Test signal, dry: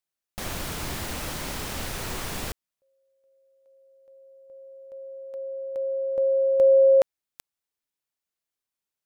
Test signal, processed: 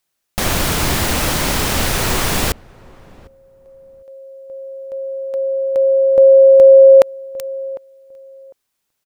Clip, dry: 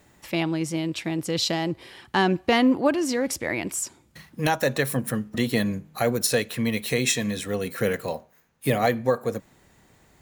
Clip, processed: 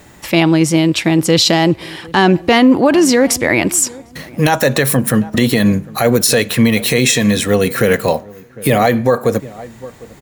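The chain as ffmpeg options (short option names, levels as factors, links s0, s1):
-filter_complex "[0:a]asplit=2[s0][s1];[s1]adelay=752,lowpass=f=960:p=1,volume=0.075,asplit=2[s2][s3];[s3]adelay=752,lowpass=f=960:p=1,volume=0.21[s4];[s2][s4]amix=inputs=2:normalize=0[s5];[s0][s5]amix=inputs=2:normalize=0,alimiter=level_in=6.31:limit=0.891:release=50:level=0:latency=1,volume=0.891"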